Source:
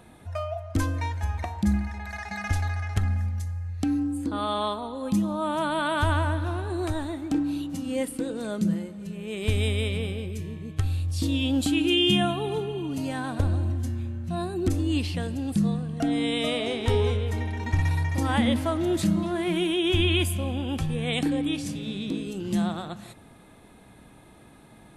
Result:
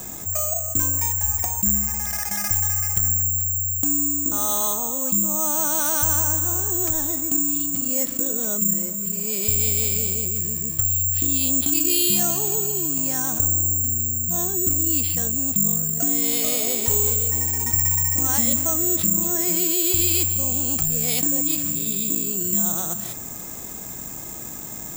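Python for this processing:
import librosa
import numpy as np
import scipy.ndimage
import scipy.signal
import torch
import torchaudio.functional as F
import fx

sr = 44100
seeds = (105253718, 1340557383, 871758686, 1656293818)

y = scipy.signal.sosfilt(scipy.signal.butter(2, 4300.0, 'lowpass', fs=sr, output='sos'), x)
y = (np.kron(y[::6], np.eye(6)[0]) * 6)[:len(y)]
y = fx.env_flatten(y, sr, amount_pct=50)
y = F.gain(torch.from_numpy(y), -6.5).numpy()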